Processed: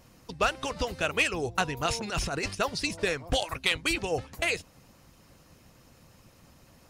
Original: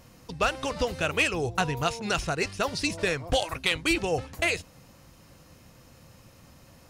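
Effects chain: harmonic-percussive split harmonic -7 dB; 1.85–2.55 s: transient shaper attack -12 dB, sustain +8 dB

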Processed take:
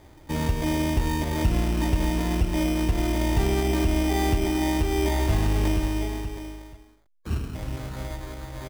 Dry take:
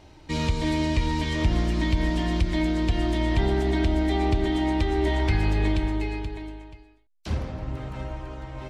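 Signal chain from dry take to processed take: resampled via 8 kHz; companded quantiser 6-bit; spectral selection erased 7.09–7.55 s, 480–1100 Hz; sample-and-hold 16×

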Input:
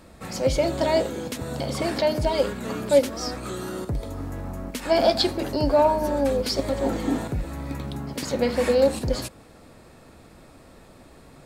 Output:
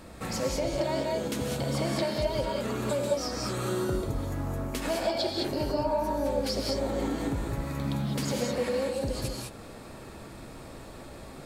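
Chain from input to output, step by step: compression 4:1, threshold -33 dBFS, peak gain reduction 17.5 dB; gated-style reverb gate 230 ms rising, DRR 0 dB; trim +2 dB

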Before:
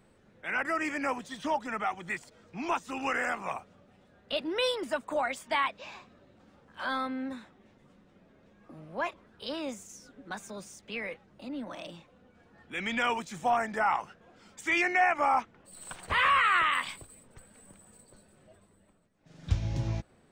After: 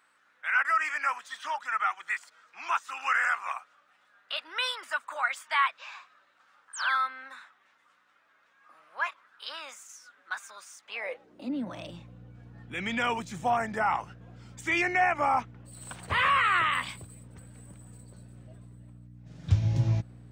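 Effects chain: hum 60 Hz, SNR 17 dB; painted sound fall, 6.73–6.97 s, 1.2–9.5 kHz -40 dBFS; high-pass sweep 1.3 kHz -> 100 Hz, 10.78–11.87 s

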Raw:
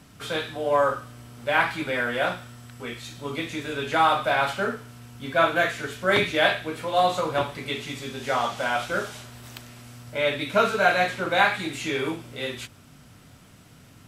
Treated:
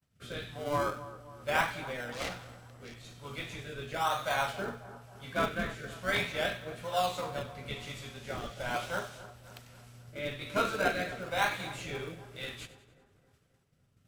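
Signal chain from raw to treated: 2.12–2.96 s: self-modulated delay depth 0.46 ms; peaking EQ 310 Hz -13.5 dB 0.73 oct; in parallel at -6.5 dB: decimation with a swept rate 34×, swing 100% 0.41 Hz; on the sum: expander -40 dBFS; rotary cabinet horn 1.1 Hz; on a send: two-band feedback delay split 1.5 kHz, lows 268 ms, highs 94 ms, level -15 dB; on the sum: trim -7.5 dB

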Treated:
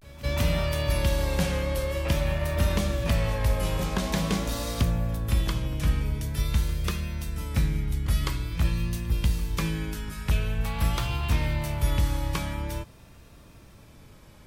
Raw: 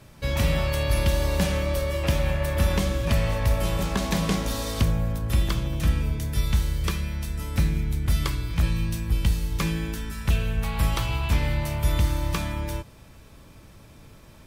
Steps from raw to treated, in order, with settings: on a send: reverse echo 198 ms -20 dB; on the sum: vibrato 0.47 Hz 75 cents; trim -2 dB

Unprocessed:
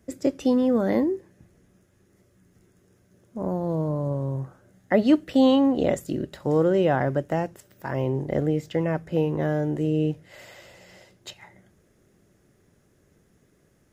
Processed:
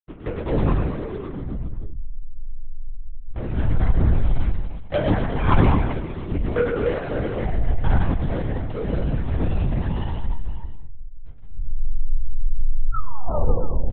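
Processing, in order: send-on-delta sampling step -34.5 dBFS; level-controlled noise filter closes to 1.6 kHz, open at -17 dBFS; waveshaping leveller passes 3; level held to a coarse grid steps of 12 dB; hysteresis with a dead band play -22.5 dBFS; inharmonic resonator 95 Hz, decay 0.5 s, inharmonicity 0.002; painted sound fall, 12.93–13.56 s, 380–1400 Hz -40 dBFS; reverse bouncing-ball echo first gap 110 ms, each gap 1.1×, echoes 5; on a send at -14 dB: reverberation RT60 0.60 s, pre-delay 6 ms; on the sum: LPC vocoder at 8 kHz whisper; trim +6 dB

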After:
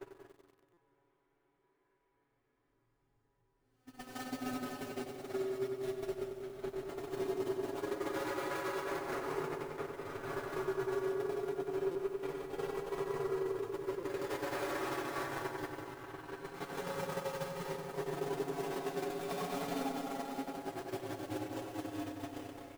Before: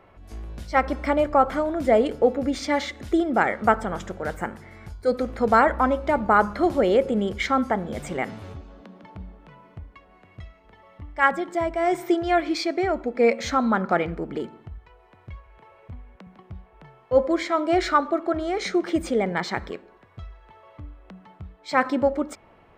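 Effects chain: cycle switcher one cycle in 2, inverted; peaking EQ 380 Hz +14.5 dB 0.23 oct; spring tank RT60 3.1 s, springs 52 ms, chirp 60 ms, DRR 6.5 dB; Paulstretch 8.1×, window 0.25 s, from 4.52 s; compression 8:1, threshold -26 dBFS, peak gain reduction 19.5 dB; treble shelf 3.4 kHz +3.5 dB; gate -25 dBFS, range -46 dB; comb 7.2 ms, depth 72%; filtered feedback delay 94 ms, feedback 60%, low-pass 2 kHz, level -13 dB; peak limiter -30.5 dBFS, peak gain reduction 11 dB; buffer glitch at 0.73/11.91/13.99 s, samples 256, times 6; bit-crushed delay 94 ms, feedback 80%, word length 10-bit, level -11 dB; trim +2 dB

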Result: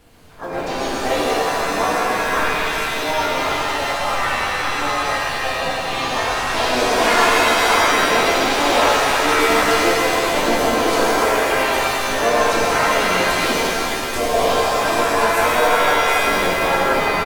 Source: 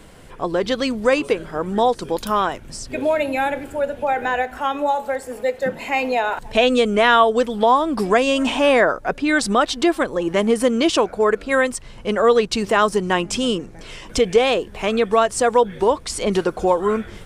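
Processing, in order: tape stop on the ending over 0.32 s; harmony voices -3 st -17 dB, +4 st -3 dB, +7 st 0 dB; in parallel at -11 dB: Schmitt trigger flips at -12 dBFS; on the sum: pitch-shifted reverb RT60 3 s, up +7 st, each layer -2 dB, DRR -6.5 dB; trim -13.5 dB

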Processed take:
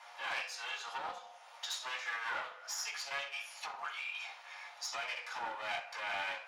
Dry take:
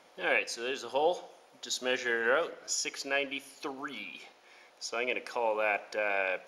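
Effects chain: one-sided clip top -37.5 dBFS; reverberation, pre-delay 3 ms, DRR -7 dB; compression 2.5:1, threshold -37 dBFS, peak gain reduction 15 dB; Chebyshev high-pass 730 Hz, order 4; loudspeaker Doppler distortion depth 0.13 ms; trim -1 dB

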